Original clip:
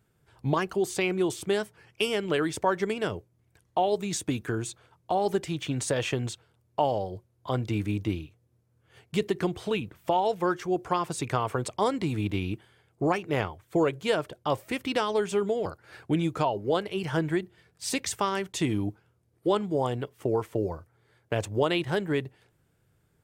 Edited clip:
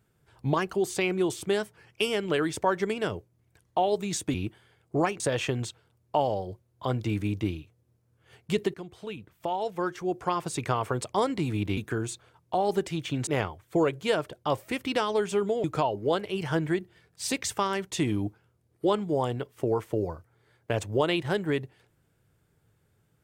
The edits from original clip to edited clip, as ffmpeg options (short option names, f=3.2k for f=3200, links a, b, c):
-filter_complex "[0:a]asplit=7[a][b][c][d][e][f][g];[a]atrim=end=4.342[h];[b]atrim=start=12.408:end=13.272[i];[c]atrim=start=5.838:end=9.38,asetpts=PTS-STARTPTS,afade=t=out:st=3.538:d=0.004:c=hsin:silence=0.188365[j];[d]atrim=start=9.38:end=12.412,asetpts=PTS-STARTPTS,afade=t=in:d=1.82:silence=0.188365[k];[e]atrim=start=4.338:end=5.842[l];[f]atrim=start=13.268:end=15.642[m];[g]atrim=start=16.258[n];[h][i]acrossfade=d=0.004:c1=hsin:c2=hsin[o];[j][k]concat=n=2:v=0:a=1[p];[o][p]acrossfade=d=0.004:c1=hsin:c2=hsin[q];[q][l]acrossfade=d=0.004:c1=hsin:c2=hsin[r];[r][m]acrossfade=d=0.004:c1=hsin:c2=hsin[s];[s][n]acrossfade=d=0.004:c1=hsin:c2=hsin"